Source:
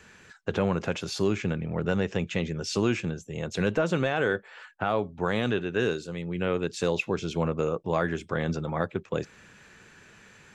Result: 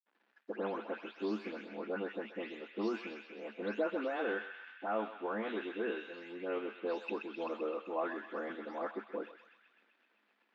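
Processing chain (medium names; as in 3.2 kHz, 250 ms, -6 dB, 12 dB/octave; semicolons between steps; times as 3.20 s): delay that grows with frequency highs late, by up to 274 ms; crossover distortion -52 dBFS; rippled Chebyshev high-pass 210 Hz, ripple 3 dB; distance through air 330 m; band-passed feedback delay 129 ms, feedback 78%, band-pass 2.6 kHz, level -6 dB; trim -5 dB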